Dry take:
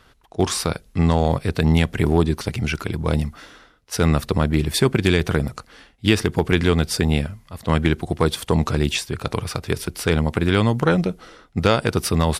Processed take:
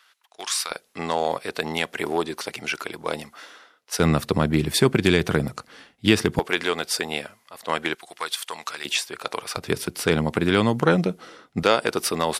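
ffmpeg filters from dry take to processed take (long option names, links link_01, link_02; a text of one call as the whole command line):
ffmpeg -i in.wav -af "asetnsamples=nb_out_samples=441:pad=0,asendcmd='0.71 highpass f 480;4 highpass f 130;6.39 highpass f 530;7.95 highpass f 1300;8.85 highpass f 550;9.57 highpass f 160;11.63 highpass f 340',highpass=1400" out.wav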